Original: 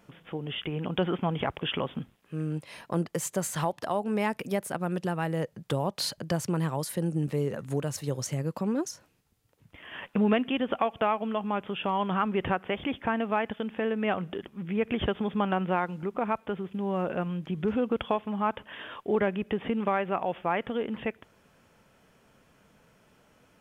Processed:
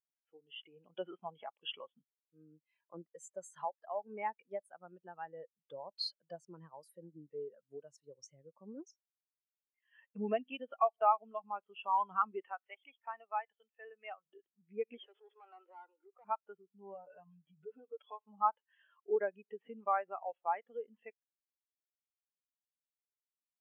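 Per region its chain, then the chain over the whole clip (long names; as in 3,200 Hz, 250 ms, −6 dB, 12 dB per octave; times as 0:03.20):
0:12.42–0:14.26: high-pass filter 700 Hz 6 dB per octave + notch filter 1,600 Hz, Q 17
0:14.97–0:16.25: Butterworth high-pass 330 Hz + tube saturation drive 33 dB, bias 0.4 + envelope flattener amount 50%
0:16.94–0:18.27: downward compressor 2 to 1, threshold −34 dBFS + comb filter 6.8 ms, depth 87%
whole clip: high-pass filter 1,100 Hz 6 dB per octave; every bin expanded away from the loudest bin 2.5 to 1; level −1 dB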